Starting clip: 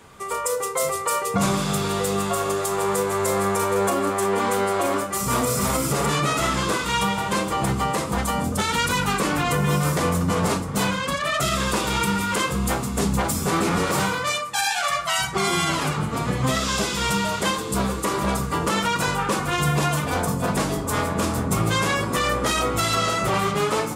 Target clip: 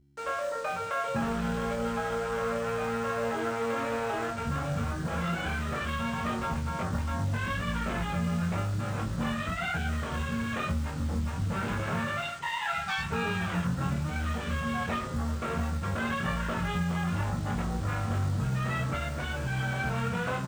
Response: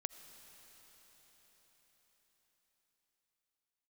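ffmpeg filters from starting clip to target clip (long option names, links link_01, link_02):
-filter_complex "[0:a]acrossover=split=3000[link_01][link_02];[link_02]acompressor=threshold=-34dB:ratio=4:attack=1:release=60[link_03];[link_01][link_03]amix=inputs=2:normalize=0,lowpass=5000,afwtdn=0.0282,asubboost=boost=7:cutoff=97,acompressor=threshold=-21dB:ratio=20,aresample=16000,acrusher=bits=6:mix=0:aa=0.000001,aresample=44100,aeval=exprs='val(0)+0.002*(sin(2*PI*60*n/s)+sin(2*PI*2*60*n/s)/2+sin(2*PI*3*60*n/s)/3+sin(2*PI*4*60*n/s)/4+sin(2*PI*5*60*n/s)/5)':channel_layout=same,asetrate=51597,aresample=44100,acrusher=bits=7:mode=log:mix=0:aa=0.000001,asplit=2[link_04][link_05];[link_05]adelay=22,volume=-4dB[link_06];[link_04][link_06]amix=inputs=2:normalize=0,volume=-6.5dB"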